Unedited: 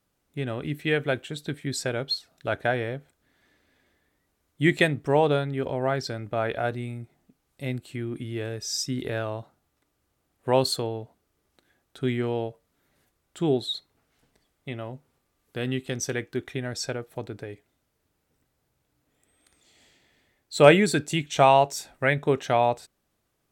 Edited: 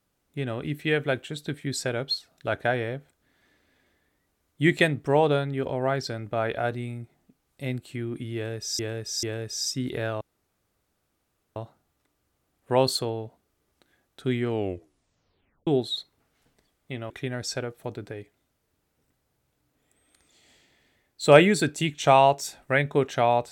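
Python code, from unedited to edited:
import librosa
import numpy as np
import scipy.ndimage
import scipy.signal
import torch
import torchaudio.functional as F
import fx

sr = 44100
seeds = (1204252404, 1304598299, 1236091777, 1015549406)

y = fx.edit(x, sr, fx.repeat(start_s=8.35, length_s=0.44, count=3),
    fx.insert_room_tone(at_s=9.33, length_s=1.35),
    fx.tape_stop(start_s=12.25, length_s=1.19),
    fx.cut(start_s=14.87, length_s=1.55), tone=tone)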